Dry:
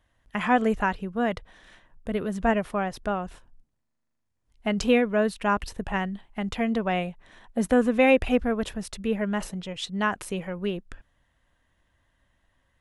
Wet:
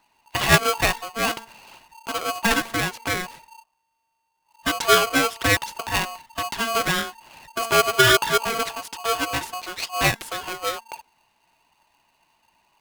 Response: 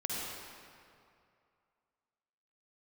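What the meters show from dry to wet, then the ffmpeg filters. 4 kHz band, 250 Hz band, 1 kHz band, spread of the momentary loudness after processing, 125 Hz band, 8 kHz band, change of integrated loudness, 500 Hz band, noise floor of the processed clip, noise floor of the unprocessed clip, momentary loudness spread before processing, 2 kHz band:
+14.5 dB, -6.0 dB, +5.5 dB, 14 LU, +4.5 dB, +15.5 dB, +4.5 dB, 0.0 dB, -74 dBFS, -77 dBFS, 12 LU, +8.5 dB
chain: -af "equalizer=f=1.9k:t=o:w=2.7:g=7.5,bandreject=f=229.6:t=h:w=4,bandreject=f=459.2:t=h:w=4,bandreject=f=688.8:t=h:w=4,bandreject=f=918.4:t=h:w=4,bandreject=f=1.148k:t=h:w=4,bandreject=f=1.3776k:t=h:w=4,aphaser=in_gain=1:out_gain=1:delay=4.9:decay=0.36:speed=1.1:type=triangular,aeval=exprs='val(0)*sgn(sin(2*PI*910*n/s))':c=same,volume=-1dB"

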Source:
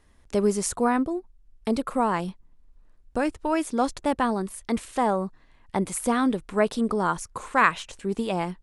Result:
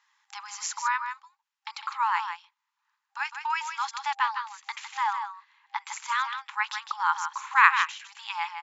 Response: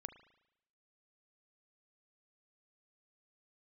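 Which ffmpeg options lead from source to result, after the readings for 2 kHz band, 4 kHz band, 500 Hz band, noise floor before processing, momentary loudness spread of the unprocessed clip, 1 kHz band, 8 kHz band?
+4.0 dB, +3.0 dB, under -40 dB, -58 dBFS, 8 LU, +0.5 dB, -4.5 dB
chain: -af "afftfilt=real='re*between(b*sr/4096,800,7500)':imag='im*between(b*sr/4096,800,7500)':win_size=4096:overlap=0.75,adynamicequalizer=threshold=0.00708:dfrequency=2300:dqfactor=1.1:tfrequency=2300:tqfactor=1.1:attack=5:release=100:ratio=0.375:range=2.5:mode=boostabove:tftype=bell,aecho=1:1:156:0.398"

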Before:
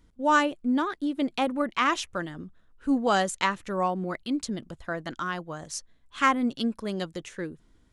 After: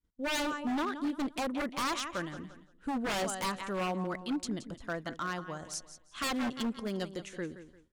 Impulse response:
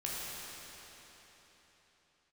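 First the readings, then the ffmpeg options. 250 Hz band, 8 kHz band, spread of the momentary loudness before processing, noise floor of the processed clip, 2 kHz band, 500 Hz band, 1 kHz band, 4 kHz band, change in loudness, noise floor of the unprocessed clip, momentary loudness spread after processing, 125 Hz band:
-6.5 dB, -2.5 dB, 14 LU, -63 dBFS, -7.5 dB, -6.5 dB, -9.5 dB, -3.5 dB, -7.0 dB, -62 dBFS, 9 LU, -4.0 dB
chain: -af "aecho=1:1:173|346|519|692:0.224|0.0828|0.0306|0.0113,aeval=exprs='0.0708*(abs(mod(val(0)/0.0708+3,4)-2)-1)':c=same,agate=range=-33dB:threshold=-49dB:ratio=3:detection=peak,volume=-4dB"

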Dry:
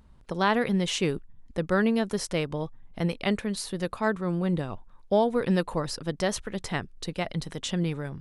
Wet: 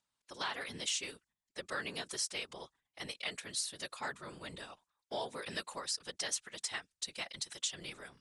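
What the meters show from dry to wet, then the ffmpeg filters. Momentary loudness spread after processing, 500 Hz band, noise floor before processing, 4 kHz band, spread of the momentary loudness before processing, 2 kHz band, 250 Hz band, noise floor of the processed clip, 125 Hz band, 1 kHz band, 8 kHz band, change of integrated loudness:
12 LU, -18.5 dB, -52 dBFS, -3.0 dB, 10 LU, -8.5 dB, -25.0 dB, under -85 dBFS, -25.5 dB, -13.5 dB, +0.5 dB, -11.0 dB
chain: -af "lowpass=f=9k:w=0.5412,lowpass=f=9k:w=1.3066,agate=range=-11dB:threshold=-43dB:ratio=16:detection=peak,aderivative,acompressor=threshold=-40dB:ratio=3,afftfilt=real='hypot(re,im)*cos(2*PI*random(0))':imag='hypot(re,im)*sin(2*PI*random(1))':win_size=512:overlap=0.75,volume=12dB"

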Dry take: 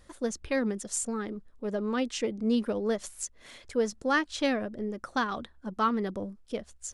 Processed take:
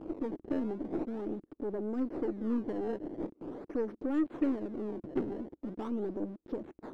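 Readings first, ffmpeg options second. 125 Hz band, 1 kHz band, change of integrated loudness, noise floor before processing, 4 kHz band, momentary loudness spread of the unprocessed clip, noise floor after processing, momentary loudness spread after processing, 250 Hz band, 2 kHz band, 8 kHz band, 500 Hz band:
-4.5 dB, -13.5 dB, -5.0 dB, -57 dBFS, under -20 dB, 11 LU, -75 dBFS, 8 LU, -2.0 dB, -19.5 dB, under -35 dB, -5.0 dB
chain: -filter_complex "[0:a]aeval=exprs='val(0)+0.5*0.0224*sgn(val(0))':c=same,asplit=2[a][b];[b]acompressor=threshold=-36dB:ratio=6,volume=1dB[c];[a][c]amix=inputs=2:normalize=0,acrusher=samples=21:mix=1:aa=0.000001:lfo=1:lforange=33.6:lforate=0.43,bandpass=f=320:t=q:w=4:csg=0,aeval=exprs='0.106*(cos(1*acos(clip(val(0)/0.106,-1,1)))-cos(1*PI/2))+0.00596*(cos(8*acos(clip(val(0)/0.106,-1,1)))-cos(8*PI/2))':c=same"

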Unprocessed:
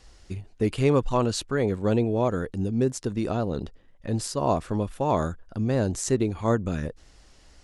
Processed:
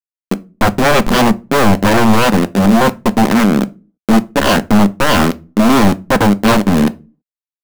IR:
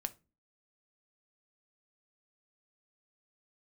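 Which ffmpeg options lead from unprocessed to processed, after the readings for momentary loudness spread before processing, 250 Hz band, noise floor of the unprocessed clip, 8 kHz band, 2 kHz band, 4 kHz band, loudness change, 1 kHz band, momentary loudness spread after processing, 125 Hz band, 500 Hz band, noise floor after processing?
10 LU, +16.0 dB, -55 dBFS, +11.0 dB, +22.0 dB, +19.0 dB, +14.0 dB, +16.5 dB, 6 LU, +9.0 dB, +10.0 dB, under -85 dBFS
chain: -filter_complex "[0:a]adynamicsmooth=sensitivity=0.5:basefreq=640,aeval=exprs='val(0)*gte(abs(val(0)),0.0473)':c=same,lowshelf=f=140:t=q:w=3:g=-11.5,aeval=exprs='0.355*sin(PI/2*5.01*val(0)/0.355)':c=same,asplit=2[a][b];[1:a]atrim=start_sample=2205[c];[b][c]afir=irnorm=-1:irlink=0,volume=9dB[d];[a][d]amix=inputs=2:normalize=0,volume=-8.5dB"

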